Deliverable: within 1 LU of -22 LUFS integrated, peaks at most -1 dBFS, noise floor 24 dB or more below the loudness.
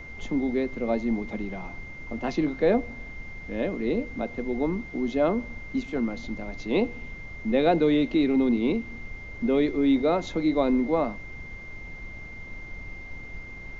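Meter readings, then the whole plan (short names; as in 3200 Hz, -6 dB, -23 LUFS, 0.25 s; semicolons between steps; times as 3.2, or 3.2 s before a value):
steady tone 2100 Hz; tone level -41 dBFS; noise floor -41 dBFS; noise floor target -51 dBFS; loudness -26.5 LUFS; peak -9.5 dBFS; loudness target -22.0 LUFS
-> notch 2100 Hz, Q 30; noise print and reduce 10 dB; gain +4.5 dB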